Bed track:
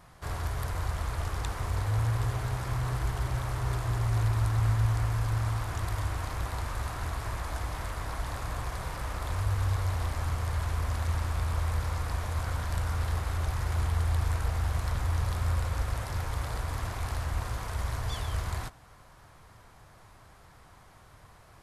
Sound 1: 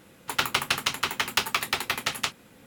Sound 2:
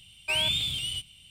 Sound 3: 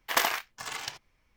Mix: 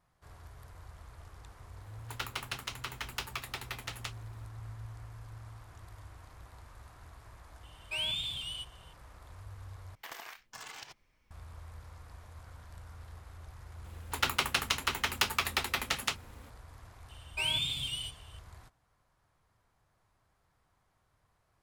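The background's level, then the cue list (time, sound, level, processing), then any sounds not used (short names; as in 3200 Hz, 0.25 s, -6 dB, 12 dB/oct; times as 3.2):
bed track -19 dB
1.81 add 1 -13.5 dB
7.63 add 2 -11 dB + bell 3200 Hz +4 dB 0.66 oct
9.95 replace with 3 -2 dB + compressor 8:1, threshold -40 dBFS
13.84 add 1 -4.5 dB
17.09 add 2 -6 dB + comb 7.3 ms, depth 48%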